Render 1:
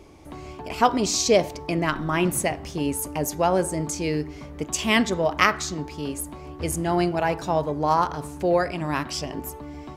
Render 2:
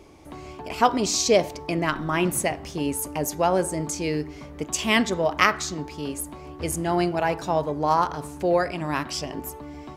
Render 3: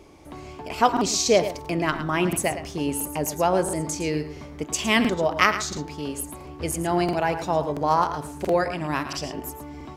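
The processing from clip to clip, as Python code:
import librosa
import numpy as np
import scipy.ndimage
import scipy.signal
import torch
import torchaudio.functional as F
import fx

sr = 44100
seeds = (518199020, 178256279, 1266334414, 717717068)

y1 = fx.low_shelf(x, sr, hz=160.0, db=-3.5)
y2 = y1 + 10.0 ** (-11.5 / 20.0) * np.pad(y1, (int(110 * sr / 1000.0), 0))[:len(y1)]
y2 = fx.buffer_crackle(y2, sr, first_s=0.92, period_s=0.68, block=2048, kind='repeat')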